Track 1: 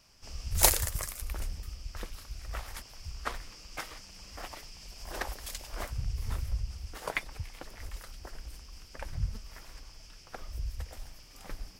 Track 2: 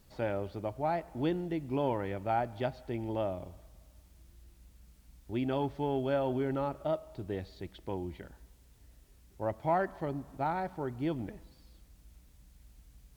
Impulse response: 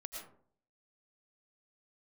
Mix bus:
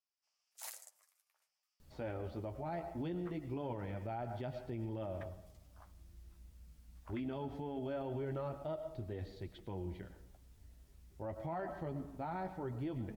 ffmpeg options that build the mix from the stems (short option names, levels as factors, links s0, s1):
-filter_complex "[0:a]afwtdn=0.0126,highpass=f=710:w=0.5412,highpass=f=710:w=1.3066,volume=0.178,asplit=2[s0][s1];[s1]volume=0.178[s2];[1:a]adelay=1800,volume=0.631,asplit=2[s3][s4];[s4]volume=0.562[s5];[2:a]atrim=start_sample=2205[s6];[s2][s5]amix=inputs=2:normalize=0[s7];[s7][s6]afir=irnorm=-1:irlink=0[s8];[s0][s3][s8]amix=inputs=3:normalize=0,lowshelf=f=200:g=6.5,flanger=delay=8.1:depth=4.5:regen=-32:speed=0.22:shape=sinusoidal,alimiter=level_in=2.82:limit=0.0631:level=0:latency=1:release=61,volume=0.355"